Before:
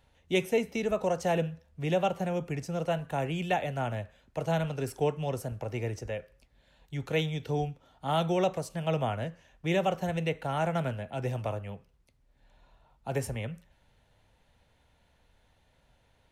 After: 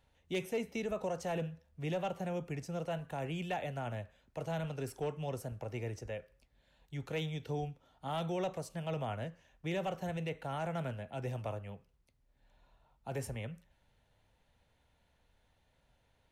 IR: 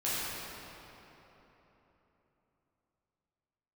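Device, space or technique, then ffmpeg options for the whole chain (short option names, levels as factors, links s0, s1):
clipper into limiter: -af "asoftclip=type=hard:threshold=0.106,alimiter=limit=0.075:level=0:latency=1:release=14,volume=0.501"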